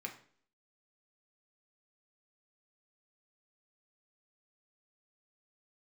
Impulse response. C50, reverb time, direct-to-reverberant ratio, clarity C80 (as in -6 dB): 10.5 dB, 0.50 s, 1.5 dB, 14.5 dB